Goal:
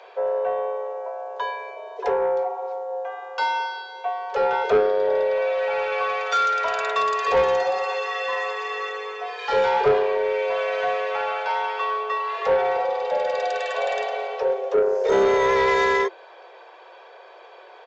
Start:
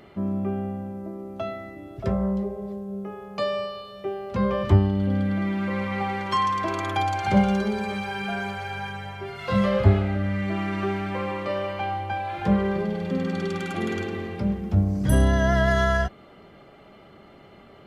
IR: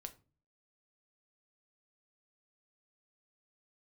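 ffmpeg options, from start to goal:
-af "afreqshift=330,aresample=16000,asoftclip=type=tanh:threshold=-16.5dB,aresample=44100,volume=3.5dB"

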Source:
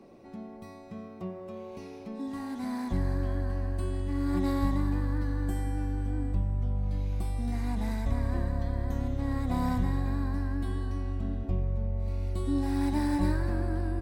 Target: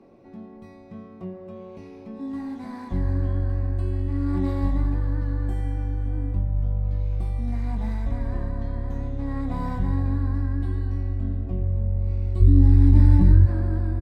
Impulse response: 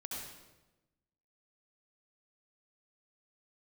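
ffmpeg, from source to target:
-filter_complex "[0:a]asplit=2[a][b];[b]adelay=22,volume=-7dB[c];[a][c]amix=inputs=2:normalize=0,asplit=2[d][e];[1:a]atrim=start_sample=2205,lowshelf=f=200:g=12[f];[e][f]afir=irnorm=-1:irlink=0,volume=-14dB[g];[d][g]amix=inputs=2:normalize=0,asplit=3[h][i][j];[h]afade=t=out:st=12.4:d=0.02[k];[i]asubboost=boost=6:cutoff=240,afade=t=in:st=12.4:d=0.02,afade=t=out:st=13.45:d=0.02[l];[j]afade=t=in:st=13.45:d=0.02[m];[k][l][m]amix=inputs=3:normalize=0,lowpass=f=2.6k:p=1,alimiter=level_in=4.5dB:limit=-1dB:release=50:level=0:latency=1,volume=-5.5dB"

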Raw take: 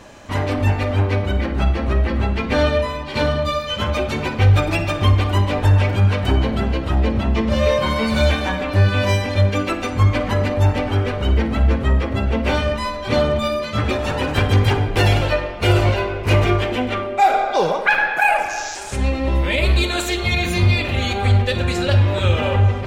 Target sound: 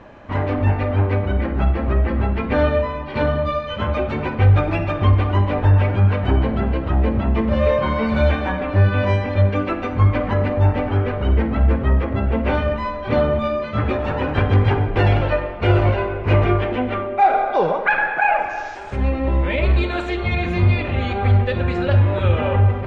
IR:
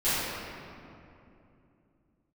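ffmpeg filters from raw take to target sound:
-af "lowpass=2k"

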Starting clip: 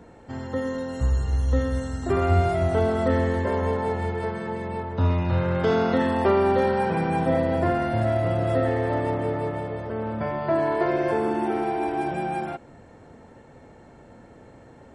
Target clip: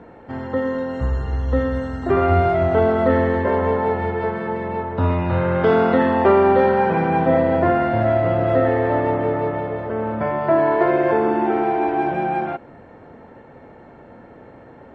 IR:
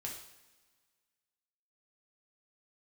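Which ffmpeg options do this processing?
-af "lowpass=2.4k,lowshelf=f=150:g=-8,volume=7dB"

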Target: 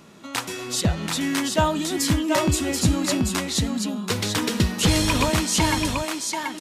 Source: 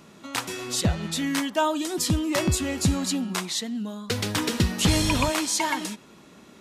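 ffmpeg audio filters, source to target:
-af "aecho=1:1:733:0.631,volume=1.5dB"

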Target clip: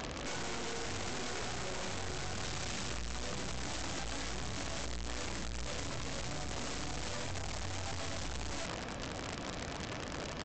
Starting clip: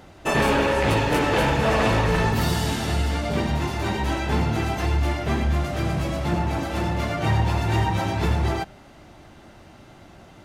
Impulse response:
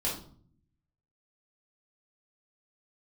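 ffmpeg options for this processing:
-af "aeval=exprs='(tanh(89.1*val(0)+0.5)-tanh(0.5))/89.1':c=same,asetrate=37084,aresample=44100,atempo=1.18921,aresample=16000,aeval=exprs='(mod(126*val(0)+1,2)-1)/126':c=same,aresample=44100,volume=9dB"

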